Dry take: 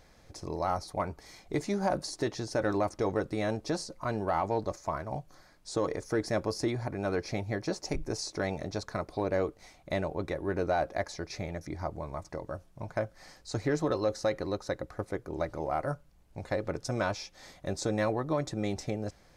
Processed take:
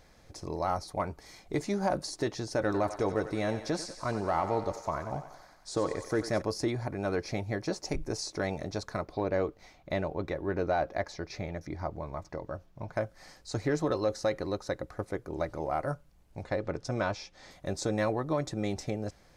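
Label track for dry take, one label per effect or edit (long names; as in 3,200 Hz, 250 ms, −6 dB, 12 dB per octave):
2.650000	6.420000	feedback echo with a high-pass in the loop 92 ms, feedback 71%, high-pass 520 Hz, level −10 dB
9.010000	12.930000	parametric band 9,400 Hz −11.5 dB 0.85 octaves
16.430000	17.510000	high-frequency loss of the air 62 metres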